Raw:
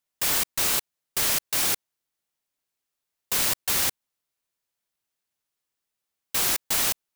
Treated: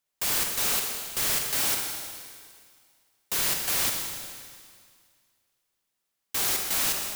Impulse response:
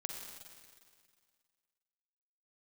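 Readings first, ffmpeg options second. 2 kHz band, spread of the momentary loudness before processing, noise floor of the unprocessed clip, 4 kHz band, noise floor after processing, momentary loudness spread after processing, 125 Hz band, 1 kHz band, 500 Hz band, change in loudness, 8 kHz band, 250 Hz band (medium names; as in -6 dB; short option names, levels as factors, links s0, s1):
-1.5 dB, 5 LU, -85 dBFS, -1.5 dB, -81 dBFS, 15 LU, -1.5 dB, -1.5 dB, -1.0 dB, -2.0 dB, -1.5 dB, -1.5 dB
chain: -filter_complex "[0:a]volume=18.8,asoftclip=hard,volume=0.0531[s0];[1:a]atrim=start_sample=2205[s1];[s0][s1]afir=irnorm=-1:irlink=0,volume=1.5"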